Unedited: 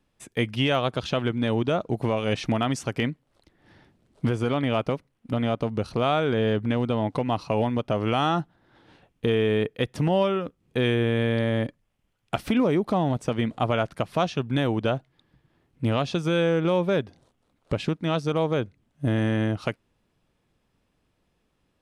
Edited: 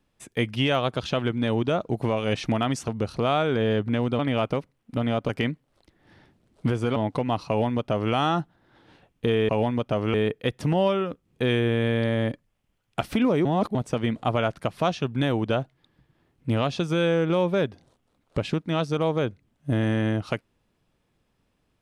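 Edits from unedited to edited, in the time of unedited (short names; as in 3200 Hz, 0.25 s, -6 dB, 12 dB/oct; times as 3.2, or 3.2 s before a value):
2.88–4.55 swap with 5.65–6.96
7.48–8.13 copy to 9.49
12.8–13.1 reverse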